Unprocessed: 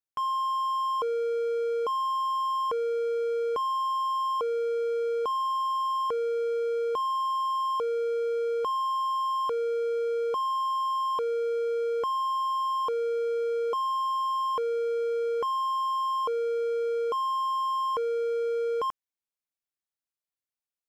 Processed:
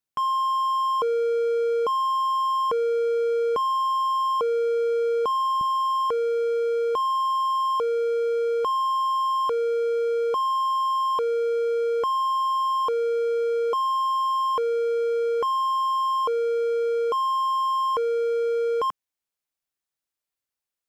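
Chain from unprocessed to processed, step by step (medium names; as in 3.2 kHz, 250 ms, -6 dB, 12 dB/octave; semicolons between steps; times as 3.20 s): peaking EQ 180 Hz +6 dB 0.94 oct, from 5.61 s -2 dB; trim +4.5 dB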